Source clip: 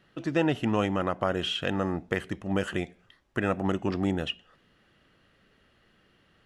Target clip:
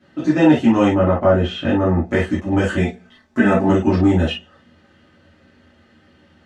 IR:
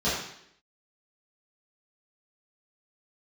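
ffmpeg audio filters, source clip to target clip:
-filter_complex "[0:a]asettb=1/sr,asplit=3[link_01][link_02][link_03];[link_01]atrim=end=0.914[link_04];[link_02]atrim=start=0.91:end=2.04,asetpts=PTS-STARTPTS,afade=type=in:duration=0.004:curve=qsin,afade=type=out:start_time=1.126:duration=0.004:curve=qsin,lowpass=frequency=1700:poles=1[link_05];[link_03]atrim=start=2.036[link_06];[link_04][link_05]acrossfade=duration=0.004:curve1=hsin:curve2=qsin[link_07];[link_07][link_06]acrossfade=duration=0.004:curve1=qsin:curve2=hsin,asettb=1/sr,asplit=3[link_08][link_09][link_10];[link_08]atrim=end=2.774[link_11];[link_09]atrim=start=2.77:end=3.68,asetpts=PTS-STARTPTS,afade=type=in:duration=0.004:curve=qsin,afade=type=out:start_time=0.906:duration=0.004:curve=qsin,aecho=1:1:4.6:0.68,atrim=end_sample=40131[link_12];[link_10]atrim=start=3.676[link_13];[link_11][link_12]acrossfade=duration=0.004:curve1=hsin:curve2=qsin[link_14];[link_14][link_13]acrossfade=duration=0.004:curve1=qsin:curve2=hsin[link_15];[1:a]atrim=start_sample=2205,atrim=end_sample=4410,asetrate=57330,aresample=44100[link_16];[link_15][link_16]afir=irnorm=-1:irlink=0,volume=-1dB"

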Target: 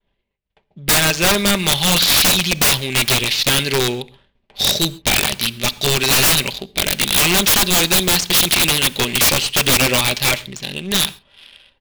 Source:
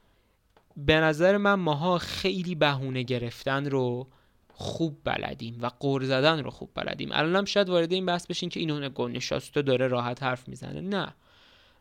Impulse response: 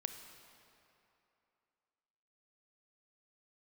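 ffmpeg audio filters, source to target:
-filter_complex "[0:a]agate=range=-33dB:threshold=-56dB:ratio=3:detection=peak,aecho=1:1:5.1:0.34,dynaudnorm=framelen=370:gausssize=9:maxgain=6dB,aexciter=amount=11.7:drive=7.5:freq=2100,asplit=2[link_01][link_02];[link_02]highpass=frequency=720:poles=1,volume=7dB,asoftclip=type=tanh:threshold=0dB[link_03];[link_01][link_03]amix=inputs=2:normalize=0,lowpass=frequency=1300:poles=1,volume=-6dB,adynamicsmooth=sensitivity=6:basefreq=1100,aeval=exprs='(mod(3.76*val(0)+1,2)-1)/3.76':channel_layout=same,asplit=2[link_04][link_05];[1:a]atrim=start_sample=2205,atrim=end_sample=6174,lowshelf=frequency=220:gain=10.5[link_06];[link_05][link_06]afir=irnorm=-1:irlink=0,volume=-4dB[link_07];[link_04][link_07]amix=inputs=2:normalize=0"

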